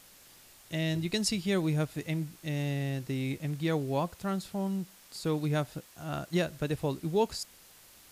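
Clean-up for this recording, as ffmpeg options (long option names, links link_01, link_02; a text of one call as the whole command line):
ffmpeg -i in.wav -af "adeclick=threshold=4,afftdn=noise_reduction=21:noise_floor=-56" out.wav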